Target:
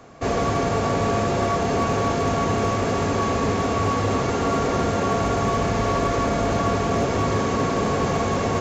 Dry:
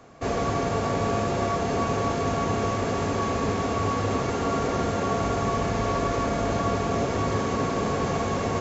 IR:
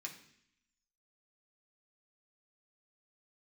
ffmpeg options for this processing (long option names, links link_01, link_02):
-af "asoftclip=type=hard:threshold=-19dB,volume=4dB"